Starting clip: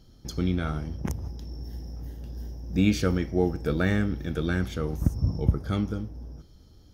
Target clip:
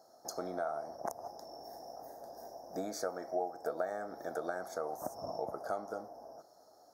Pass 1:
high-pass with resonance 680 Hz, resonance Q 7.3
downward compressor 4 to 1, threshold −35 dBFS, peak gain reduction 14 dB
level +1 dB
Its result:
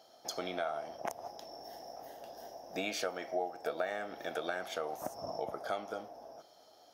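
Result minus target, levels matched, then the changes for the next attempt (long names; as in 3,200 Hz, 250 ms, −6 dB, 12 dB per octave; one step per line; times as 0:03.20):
2,000 Hz band +5.5 dB
add after downward compressor: Butterworth band-reject 2,800 Hz, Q 0.7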